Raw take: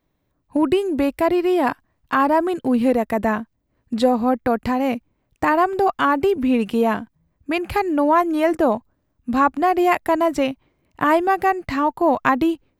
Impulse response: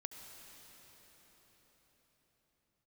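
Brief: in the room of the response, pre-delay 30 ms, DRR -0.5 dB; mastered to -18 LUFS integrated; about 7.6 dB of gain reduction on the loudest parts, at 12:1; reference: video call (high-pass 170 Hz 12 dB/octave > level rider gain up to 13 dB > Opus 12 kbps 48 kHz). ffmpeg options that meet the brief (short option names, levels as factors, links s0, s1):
-filter_complex "[0:a]acompressor=threshold=0.112:ratio=12,asplit=2[s0][s1];[1:a]atrim=start_sample=2205,adelay=30[s2];[s1][s2]afir=irnorm=-1:irlink=0,volume=1.5[s3];[s0][s3]amix=inputs=2:normalize=0,highpass=170,dynaudnorm=m=4.47,volume=1.68" -ar 48000 -c:a libopus -b:a 12k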